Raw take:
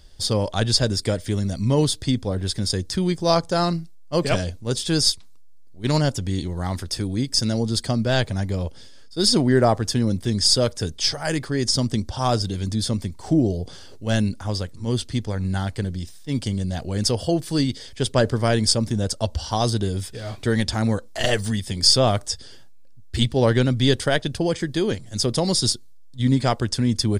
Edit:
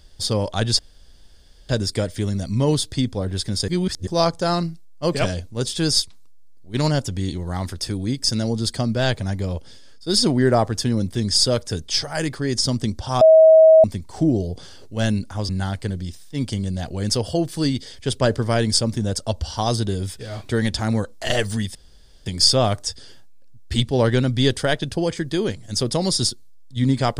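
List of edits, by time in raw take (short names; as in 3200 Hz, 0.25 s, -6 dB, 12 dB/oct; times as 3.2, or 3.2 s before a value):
0.79 insert room tone 0.90 s
2.78–3.17 reverse
12.31–12.94 bleep 639 Hz -6.5 dBFS
14.59–15.43 cut
21.69 insert room tone 0.51 s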